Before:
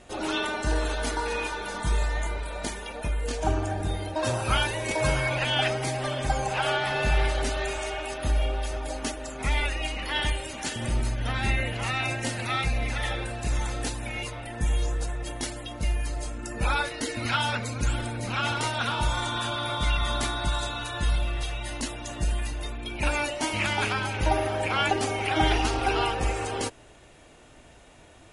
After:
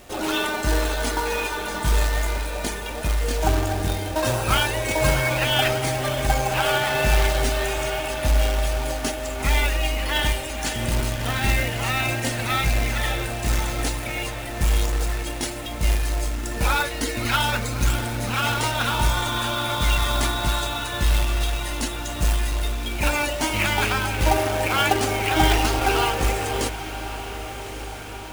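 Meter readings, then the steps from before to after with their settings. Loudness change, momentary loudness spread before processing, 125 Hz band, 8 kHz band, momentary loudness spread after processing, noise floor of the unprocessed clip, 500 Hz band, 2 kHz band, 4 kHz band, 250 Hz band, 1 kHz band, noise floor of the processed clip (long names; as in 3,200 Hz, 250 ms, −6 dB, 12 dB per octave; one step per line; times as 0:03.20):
+5.0 dB, 8 LU, +5.0 dB, +7.0 dB, 7 LU, −51 dBFS, +5.0 dB, +4.5 dB, +5.0 dB, +4.5 dB, +4.5 dB, −32 dBFS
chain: log-companded quantiser 4 bits
feedback delay with all-pass diffusion 1,235 ms, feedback 59%, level −12.5 dB
level +4 dB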